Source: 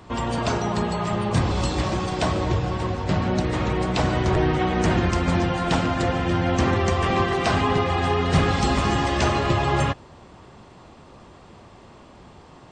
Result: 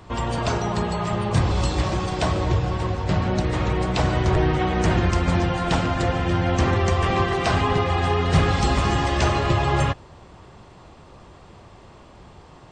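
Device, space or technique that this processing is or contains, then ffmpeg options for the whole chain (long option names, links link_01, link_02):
low shelf boost with a cut just above: -af "lowshelf=frequency=92:gain=5.5,equalizer=frequency=240:width_type=o:width=0.59:gain=-4"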